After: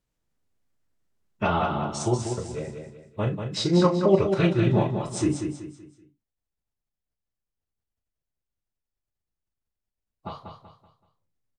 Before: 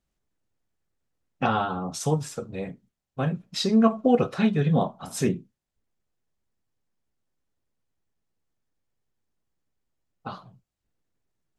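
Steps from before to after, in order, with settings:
phase-vocoder pitch shift with formants kept −4 semitones
double-tracking delay 36 ms −10 dB
repeating echo 190 ms, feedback 36%, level −6.5 dB

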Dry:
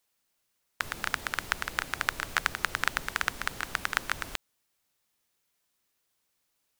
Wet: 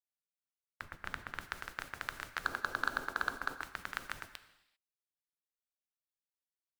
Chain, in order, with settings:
noise gate −37 dBFS, range −18 dB
0:00.81–0:01.41: bass and treble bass +5 dB, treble −8 dB
0:02.44–0:03.62: gain on a spectral selection 230–1,700 Hz +9 dB
soft clipping −8.5 dBFS, distortion −11 dB
reverb whose tail is shaped and stops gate 420 ms falling, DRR 11 dB
level −9 dB

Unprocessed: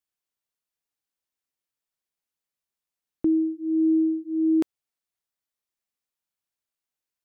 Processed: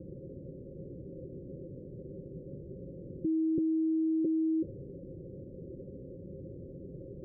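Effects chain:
sign of each sample alone
Chebyshev low-pass with heavy ripple 550 Hz, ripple 6 dB
parametric band 200 Hz +5 dB 0.99 octaves
notch comb filter 220 Hz
level +4.5 dB

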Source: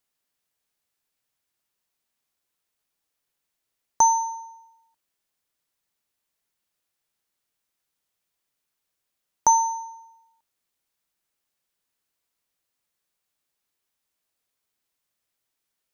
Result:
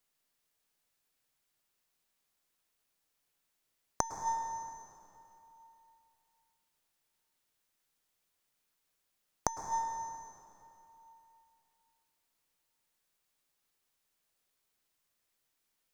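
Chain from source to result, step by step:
gain on one half-wave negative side −3 dB
gate with flip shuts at −16 dBFS, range −26 dB
dense smooth reverb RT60 3 s, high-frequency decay 0.75×, pre-delay 95 ms, DRR 7.5 dB
level +1 dB

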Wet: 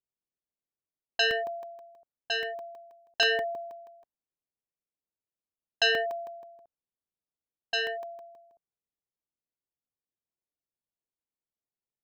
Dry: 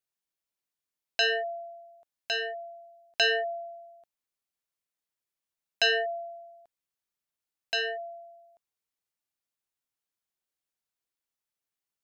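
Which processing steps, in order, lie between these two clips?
low-pass that shuts in the quiet parts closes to 580 Hz, open at −30.5 dBFS
regular buffer underruns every 0.16 s, samples 64, zero, from 0:00.67

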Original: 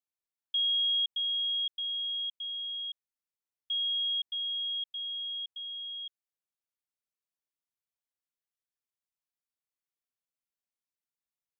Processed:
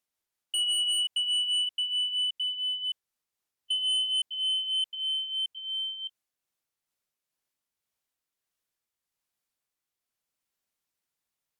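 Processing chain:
pitch glide at a constant tempo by −2 semitones ending unshifted
sine wavefolder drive 5 dB, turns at −24.5 dBFS

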